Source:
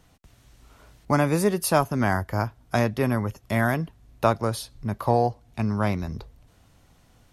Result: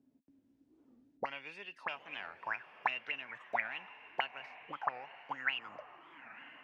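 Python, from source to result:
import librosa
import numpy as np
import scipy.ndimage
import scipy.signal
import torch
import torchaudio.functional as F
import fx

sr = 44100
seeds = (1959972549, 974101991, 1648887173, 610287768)

p1 = fx.speed_glide(x, sr, from_pct=85, to_pct=136)
p2 = fx.tilt_eq(p1, sr, slope=4.0)
p3 = fx.env_lowpass_down(p2, sr, base_hz=1900.0, full_db=-22.0)
p4 = fx.low_shelf(p3, sr, hz=500.0, db=11.5)
p5 = fx.notch(p4, sr, hz=1200.0, q=8.0)
p6 = 10.0 ** (-11.0 / 20.0) * np.tanh(p5 / 10.0 ** (-11.0 / 20.0))
p7 = p5 + (p6 * librosa.db_to_amplitude(-4.0))
p8 = fx.auto_wah(p7, sr, base_hz=260.0, top_hz=2800.0, q=14.0, full_db=-14.5, direction='up')
p9 = p8 + fx.echo_diffused(p8, sr, ms=909, feedback_pct=44, wet_db=-15.0, dry=0)
p10 = fx.record_warp(p9, sr, rpm=45.0, depth_cents=250.0)
y = p10 * librosa.db_to_amplitude(1.5)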